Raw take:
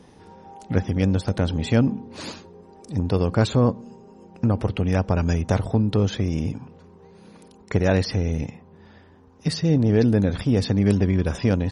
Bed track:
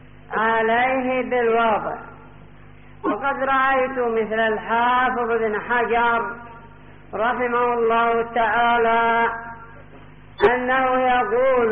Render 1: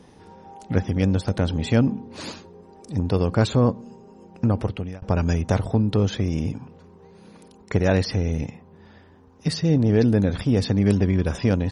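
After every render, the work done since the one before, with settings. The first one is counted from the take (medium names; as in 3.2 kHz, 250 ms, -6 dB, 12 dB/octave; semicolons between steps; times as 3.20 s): 4.59–5.02 s: fade out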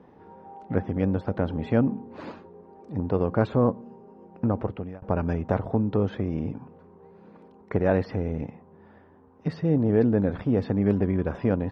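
low-pass 1.4 kHz 12 dB/octave; bass shelf 140 Hz -10.5 dB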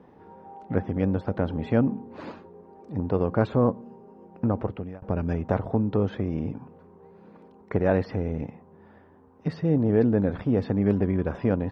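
4.67–5.31 s: dynamic bell 990 Hz, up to -7 dB, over -40 dBFS, Q 0.79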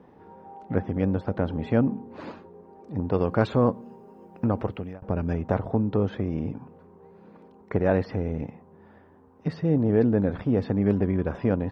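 3.12–4.93 s: treble shelf 2.2 kHz +9.5 dB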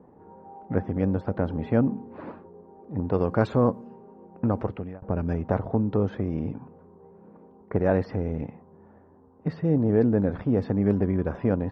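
level-controlled noise filter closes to 1 kHz, open at -19 dBFS; dynamic bell 3.2 kHz, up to -6 dB, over -51 dBFS, Q 1.2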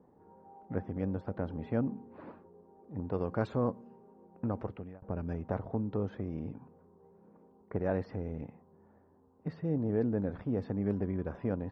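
trim -9.5 dB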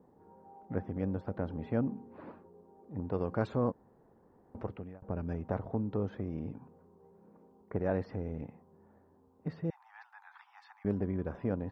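3.72–4.55 s: room tone; 9.70–10.85 s: steep high-pass 810 Hz 96 dB/octave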